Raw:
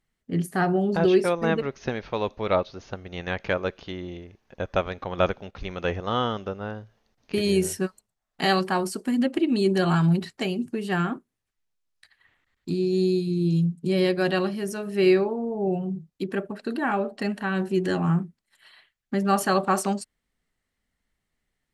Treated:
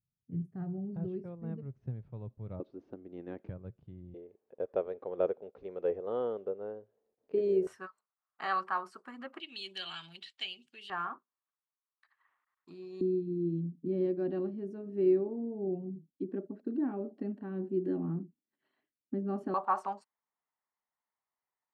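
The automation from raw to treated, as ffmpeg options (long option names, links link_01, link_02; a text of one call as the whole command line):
ffmpeg -i in.wav -af "asetnsamples=nb_out_samples=441:pad=0,asendcmd='2.6 bandpass f 310;3.49 bandpass f 120;4.14 bandpass f 450;7.67 bandpass f 1200;9.4 bandpass f 3200;10.9 bandpass f 1100;13.01 bandpass f 290;19.54 bandpass f 960',bandpass=frequency=120:width_type=q:width=4.1:csg=0" out.wav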